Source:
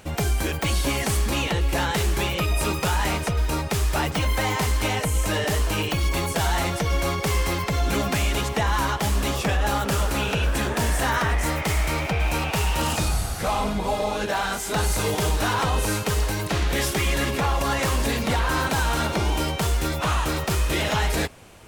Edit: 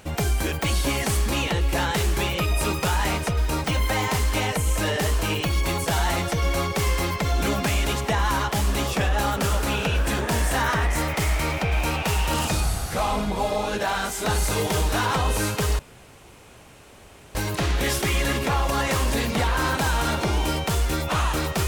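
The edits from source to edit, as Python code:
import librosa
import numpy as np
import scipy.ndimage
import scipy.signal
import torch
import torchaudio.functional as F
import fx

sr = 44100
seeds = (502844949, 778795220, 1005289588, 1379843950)

y = fx.edit(x, sr, fx.cut(start_s=3.64, length_s=0.48),
    fx.insert_room_tone(at_s=16.27, length_s=1.56), tone=tone)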